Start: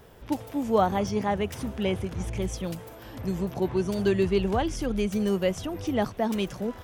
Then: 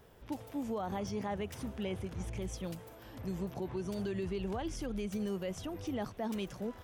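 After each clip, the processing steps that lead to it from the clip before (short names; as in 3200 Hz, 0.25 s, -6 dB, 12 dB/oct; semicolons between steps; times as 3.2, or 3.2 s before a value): limiter -21 dBFS, peak gain reduction 10.5 dB; gain -8 dB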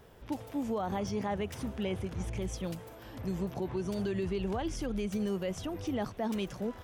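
high shelf 10000 Hz -3.5 dB; gain +3.5 dB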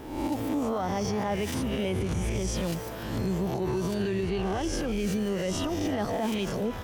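spectral swells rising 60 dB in 0.78 s; limiter -30.5 dBFS, peak gain reduction 9.5 dB; on a send at -15 dB: reverb, pre-delay 3 ms; on the sum: gain +9 dB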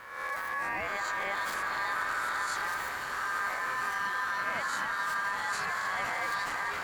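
transient shaper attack -4 dB, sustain +5 dB; ring modulator 1400 Hz; swelling echo 86 ms, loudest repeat 8, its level -15 dB; gain -2.5 dB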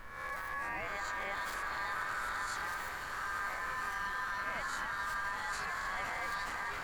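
added noise brown -47 dBFS; gain -5.5 dB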